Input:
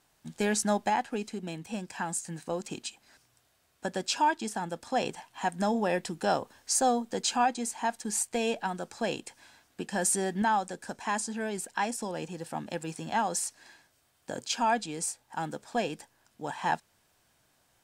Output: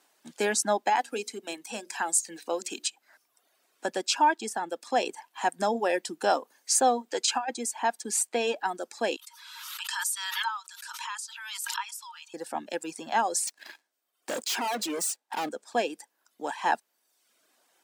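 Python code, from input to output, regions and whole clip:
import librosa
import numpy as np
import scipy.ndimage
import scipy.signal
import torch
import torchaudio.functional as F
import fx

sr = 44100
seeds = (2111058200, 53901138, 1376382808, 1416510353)

y = fx.chain(x, sr, fx.highpass(hz=200.0, slope=12),
    fx.high_shelf(hz=3000.0, db=6.5),
    fx.hum_notches(base_hz=60, count=10), at=(0.95, 2.88))
y = fx.chain(y, sr, fx.lowpass(hz=12000.0, slope=12),
    fx.low_shelf(hz=290.0, db=-11.5),
    fx.over_compress(threshold_db=-29.0, ratio=-0.5), at=(7.08, 7.5))
y = fx.chain(y, sr, fx.cheby_ripple_highpass(hz=900.0, ripple_db=9),
    fx.peak_eq(hz=12000.0, db=12.0, octaves=0.24),
    fx.pre_swell(db_per_s=29.0), at=(9.16, 12.34))
y = fx.chain(y, sr, fx.leveller(passes=3),
    fx.clip_hard(threshold_db=-31.0), at=(13.47, 15.49))
y = scipy.signal.sosfilt(scipy.signal.butter(4, 270.0, 'highpass', fs=sr, output='sos'), y)
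y = fx.dereverb_blind(y, sr, rt60_s=0.81)
y = F.gain(torch.from_numpy(y), 3.5).numpy()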